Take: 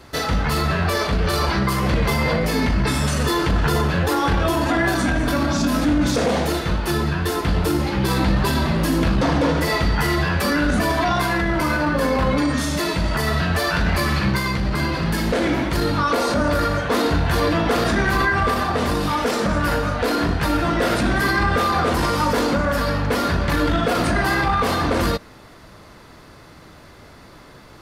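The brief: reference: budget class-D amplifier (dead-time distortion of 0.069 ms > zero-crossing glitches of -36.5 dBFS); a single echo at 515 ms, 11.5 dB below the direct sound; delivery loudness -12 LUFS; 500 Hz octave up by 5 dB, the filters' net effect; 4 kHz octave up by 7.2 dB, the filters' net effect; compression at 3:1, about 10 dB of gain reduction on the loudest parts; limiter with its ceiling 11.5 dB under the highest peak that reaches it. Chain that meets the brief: peaking EQ 500 Hz +6 dB; peaking EQ 4 kHz +8.5 dB; compression 3:1, threshold -26 dBFS; peak limiter -25 dBFS; delay 515 ms -11.5 dB; dead-time distortion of 0.069 ms; zero-crossing glitches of -36.5 dBFS; trim +21 dB

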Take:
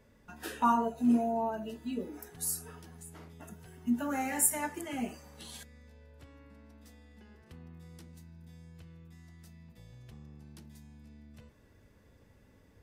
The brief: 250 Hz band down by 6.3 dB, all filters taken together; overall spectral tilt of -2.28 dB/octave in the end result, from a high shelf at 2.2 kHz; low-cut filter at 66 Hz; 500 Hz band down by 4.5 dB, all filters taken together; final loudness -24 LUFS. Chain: high-pass 66 Hz; peaking EQ 250 Hz -5.5 dB; peaking EQ 500 Hz -6 dB; treble shelf 2.2 kHz +4.5 dB; trim +7.5 dB

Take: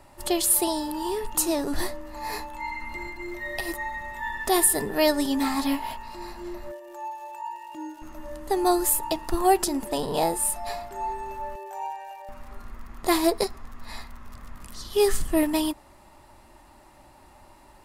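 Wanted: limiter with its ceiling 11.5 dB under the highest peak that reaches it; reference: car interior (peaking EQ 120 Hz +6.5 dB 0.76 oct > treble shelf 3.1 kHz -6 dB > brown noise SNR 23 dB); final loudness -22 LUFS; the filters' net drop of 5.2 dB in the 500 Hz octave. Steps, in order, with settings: peaking EQ 500 Hz -8 dB; peak limiter -17.5 dBFS; peaking EQ 120 Hz +6.5 dB 0.76 oct; treble shelf 3.1 kHz -6 dB; brown noise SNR 23 dB; trim +10.5 dB

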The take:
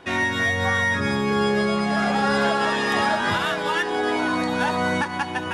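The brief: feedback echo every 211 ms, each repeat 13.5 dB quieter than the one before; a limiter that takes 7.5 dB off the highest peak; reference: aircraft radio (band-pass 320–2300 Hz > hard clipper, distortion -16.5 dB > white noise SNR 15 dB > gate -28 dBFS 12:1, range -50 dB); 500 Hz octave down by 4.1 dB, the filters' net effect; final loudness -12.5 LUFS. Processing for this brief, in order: peaking EQ 500 Hz -4 dB; peak limiter -18 dBFS; band-pass 320–2300 Hz; feedback delay 211 ms, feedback 21%, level -13.5 dB; hard clipper -24 dBFS; white noise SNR 15 dB; gate -28 dBFS 12:1, range -50 dB; trim +16 dB

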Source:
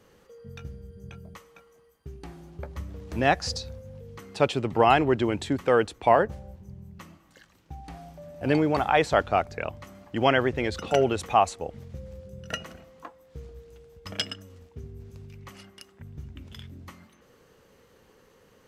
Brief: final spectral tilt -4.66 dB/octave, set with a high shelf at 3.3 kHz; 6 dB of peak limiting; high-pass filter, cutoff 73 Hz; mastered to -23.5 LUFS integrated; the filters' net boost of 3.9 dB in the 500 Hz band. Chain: high-pass 73 Hz; peaking EQ 500 Hz +5 dB; treble shelf 3.3 kHz -4 dB; trim +1.5 dB; peak limiter -8.5 dBFS

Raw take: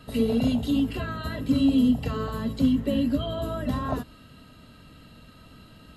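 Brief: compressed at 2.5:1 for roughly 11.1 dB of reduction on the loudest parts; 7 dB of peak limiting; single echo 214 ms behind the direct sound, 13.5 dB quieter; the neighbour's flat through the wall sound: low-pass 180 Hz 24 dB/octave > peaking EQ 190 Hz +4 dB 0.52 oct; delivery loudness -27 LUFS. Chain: compression 2.5:1, threshold -34 dBFS; peak limiter -29 dBFS; low-pass 180 Hz 24 dB/octave; peaking EQ 190 Hz +4 dB 0.52 oct; delay 214 ms -13.5 dB; trim +18 dB

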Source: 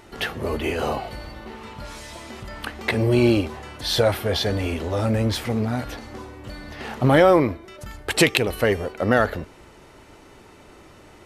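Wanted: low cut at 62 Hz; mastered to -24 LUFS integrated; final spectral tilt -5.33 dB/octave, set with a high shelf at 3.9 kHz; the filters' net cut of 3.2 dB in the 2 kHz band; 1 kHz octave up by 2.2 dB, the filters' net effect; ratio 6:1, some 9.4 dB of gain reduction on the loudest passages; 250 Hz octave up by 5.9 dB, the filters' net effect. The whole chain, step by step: high-pass 62 Hz; peaking EQ 250 Hz +7.5 dB; peaking EQ 1 kHz +4 dB; peaking EQ 2 kHz -4.5 dB; treble shelf 3.9 kHz -4 dB; compression 6:1, threshold -18 dBFS; trim +1.5 dB

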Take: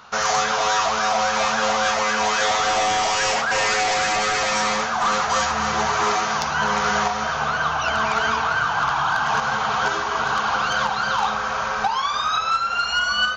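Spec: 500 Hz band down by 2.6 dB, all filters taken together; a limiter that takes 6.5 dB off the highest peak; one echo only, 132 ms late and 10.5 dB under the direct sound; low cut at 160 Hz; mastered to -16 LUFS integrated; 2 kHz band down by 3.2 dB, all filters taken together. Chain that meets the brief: high-pass 160 Hz; peaking EQ 500 Hz -3 dB; peaking EQ 2 kHz -4.5 dB; peak limiter -17.5 dBFS; delay 132 ms -10.5 dB; trim +8 dB

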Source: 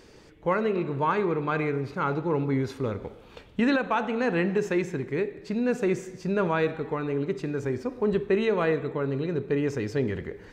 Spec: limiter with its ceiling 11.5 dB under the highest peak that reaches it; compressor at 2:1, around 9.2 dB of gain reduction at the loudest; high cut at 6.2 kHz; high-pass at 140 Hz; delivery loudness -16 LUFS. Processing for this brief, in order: high-pass 140 Hz; low-pass 6.2 kHz; compression 2:1, threshold -37 dBFS; trim +26 dB; peak limiter -7 dBFS

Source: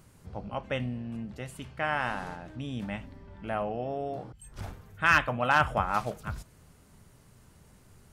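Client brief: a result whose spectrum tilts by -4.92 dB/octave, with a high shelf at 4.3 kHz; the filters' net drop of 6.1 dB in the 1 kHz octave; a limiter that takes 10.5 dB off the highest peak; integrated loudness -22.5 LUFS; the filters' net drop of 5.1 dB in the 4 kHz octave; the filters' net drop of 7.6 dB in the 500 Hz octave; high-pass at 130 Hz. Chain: high-pass 130 Hz; peaking EQ 500 Hz -7.5 dB; peaking EQ 1 kHz -5.5 dB; peaking EQ 4 kHz -3 dB; treble shelf 4.3 kHz -7.5 dB; trim +17.5 dB; peak limiter -7.5 dBFS

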